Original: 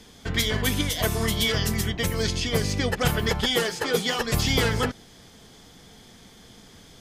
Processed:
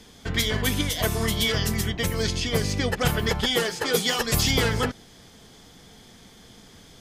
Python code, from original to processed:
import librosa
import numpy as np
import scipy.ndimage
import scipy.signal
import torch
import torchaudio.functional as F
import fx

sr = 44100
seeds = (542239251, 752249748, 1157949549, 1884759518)

y = fx.high_shelf(x, sr, hz=4500.0, db=7.0, at=(3.85, 4.51))